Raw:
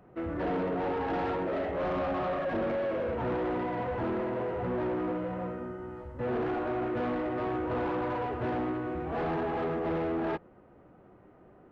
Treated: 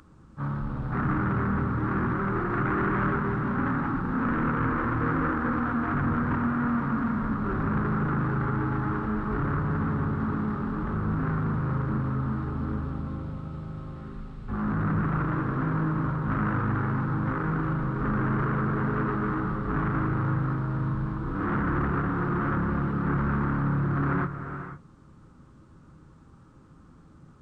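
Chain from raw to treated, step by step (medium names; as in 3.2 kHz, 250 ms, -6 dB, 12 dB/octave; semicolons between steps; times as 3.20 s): resonant high shelf 2.2 kHz +13 dB, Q 3; hum notches 60/120/180/240/300/360/420/480/540 Hz; gated-style reverb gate 230 ms rising, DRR 7.5 dB; speed mistake 78 rpm record played at 33 rpm; trim +4.5 dB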